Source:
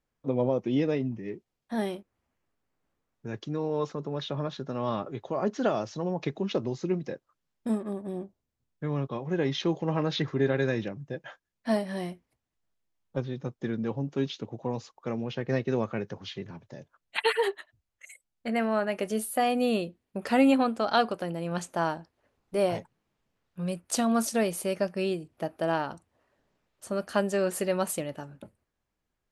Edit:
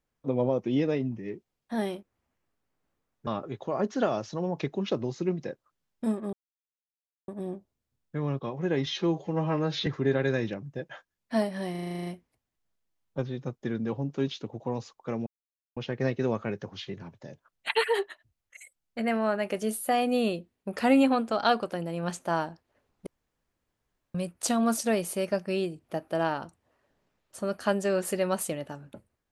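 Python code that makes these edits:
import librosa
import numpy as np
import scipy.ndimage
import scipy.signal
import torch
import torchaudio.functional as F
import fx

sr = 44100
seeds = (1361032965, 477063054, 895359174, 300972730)

y = fx.edit(x, sr, fx.cut(start_s=3.27, length_s=1.63),
    fx.insert_silence(at_s=7.96, length_s=0.95),
    fx.stretch_span(start_s=9.54, length_s=0.67, factor=1.5),
    fx.stutter(start_s=12.05, slice_s=0.04, count=10),
    fx.insert_silence(at_s=15.25, length_s=0.5),
    fx.room_tone_fill(start_s=22.55, length_s=1.08), tone=tone)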